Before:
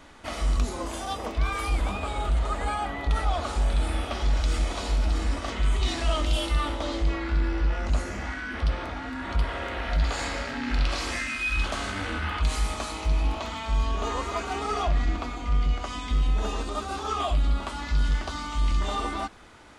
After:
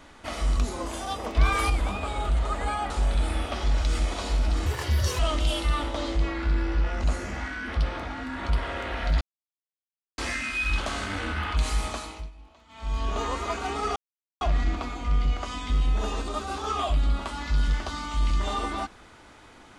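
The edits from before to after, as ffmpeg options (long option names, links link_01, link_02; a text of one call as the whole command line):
ffmpeg -i in.wav -filter_complex "[0:a]asplit=11[link_01][link_02][link_03][link_04][link_05][link_06][link_07][link_08][link_09][link_10][link_11];[link_01]atrim=end=1.352[link_12];[link_02]atrim=start=1.348:end=1.702,asetpts=PTS-STARTPTS,volume=5dB[link_13];[link_03]atrim=start=1.698:end=2.902[link_14];[link_04]atrim=start=3.488:end=5.254[link_15];[link_05]atrim=start=5.25:end=6.05,asetpts=PTS-STARTPTS,asetrate=66591,aresample=44100,atrim=end_sample=23364,asetpts=PTS-STARTPTS[link_16];[link_06]atrim=start=6.046:end=10.07,asetpts=PTS-STARTPTS,afade=type=out:start_time=4.02:duration=0.004:curve=hsin[link_17];[link_07]atrim=start=10.07:end=11.04,asetpts=PTS-STARTPTS,volume=0[link_18];[link_08]atrim=start=11.04:end=13.17,asetpts=PTS-STARTPTS,afade=type=in:duration=0.004:curve=hsin,afade=type=out:start_time=1.71:duration=0.42:silence=0.0668344[link_19];[link_09]atrim=start=13.17:end=13.54,asetpts=PTS-STARTPTS,volume=-23.5dB[link_20];[link_10]atrim=start=13.54:end=14.82,asetpts=PTS-STARTPTS,afade=type=in:duration=0.42:silence=0.0668344,afade=type=out:start_time=1.276:duration=0.004:curve=hsin,apad=pad_dur=0.45[link_21];[link_11]atrim=start=14.82,asetpts=PTS-STARTPTS,afade=type=in:duration=0.004:curve=hsin[link_22];[link_12][link_13]acrossfade=duration=0.004:curve1=hsin:curve2=hsin[link_23];[link_23][link_14]acrossfade=duration=0.004:curve1=hsin:curve2=hsin[link_24];[link_24][link_15]acrossfade=duration=0.004:curve1=hsin:curve2=hsin[link_25];[link_25][link_16]acrossfade=duration=0.004:curve1=hsin:curve2=hsin[link_26];[link_17][link_18][link_19][link_20][link_21][link_22]concat=n=6:v=0:a=1[link_27];[link_26][link_27]acrossfade=duration=0.004:curve1=hsin:curve2=hsin" out.wav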